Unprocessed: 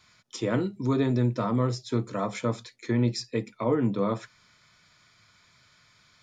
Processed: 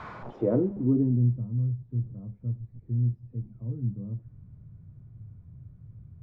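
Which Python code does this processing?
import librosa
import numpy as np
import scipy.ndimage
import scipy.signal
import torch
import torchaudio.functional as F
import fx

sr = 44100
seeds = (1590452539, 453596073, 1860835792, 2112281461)

y = fx.delta_mod(x, sr, bps=64000, step_db=-31.5)
y = fx.filter_sweep_lowpass(y, sr, from_hz=1100.0, to_hz=110.0, start_s=0.08, end_s=1.48, q=1.5)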